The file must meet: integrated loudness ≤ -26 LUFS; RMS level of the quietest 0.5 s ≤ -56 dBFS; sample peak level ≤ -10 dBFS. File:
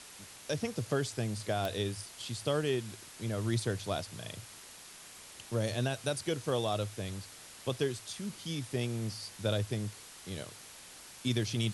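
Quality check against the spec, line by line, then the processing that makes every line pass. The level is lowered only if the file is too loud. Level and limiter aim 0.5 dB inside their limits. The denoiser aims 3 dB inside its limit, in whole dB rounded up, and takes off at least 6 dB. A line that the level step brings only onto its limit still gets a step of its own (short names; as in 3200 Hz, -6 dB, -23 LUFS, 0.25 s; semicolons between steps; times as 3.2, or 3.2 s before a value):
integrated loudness -35.5 LUFS: OK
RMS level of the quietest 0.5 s -51 dBFS: fail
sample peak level -17.0 dBFS: OK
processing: denoiser 8 dB, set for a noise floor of -51 dBFS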